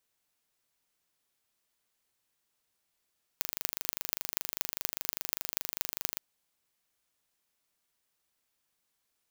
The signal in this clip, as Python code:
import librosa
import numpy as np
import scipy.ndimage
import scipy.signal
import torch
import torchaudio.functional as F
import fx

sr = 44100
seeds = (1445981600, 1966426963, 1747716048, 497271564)

y = fx.impulse_train(sr, length_s=2.78, per_s=25.0, accent_every=6, level_db=-1.5)